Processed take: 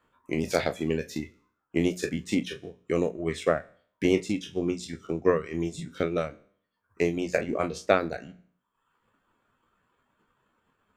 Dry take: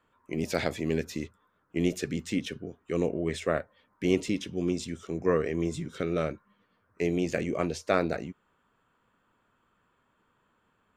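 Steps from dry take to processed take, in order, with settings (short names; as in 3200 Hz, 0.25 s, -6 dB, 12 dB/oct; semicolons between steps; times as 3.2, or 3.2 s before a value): spectral trails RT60 0.56 s; reverb removal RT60 0.88 s; transient shaper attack +5 dB, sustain -4 dB; notches 60/120/180 Hz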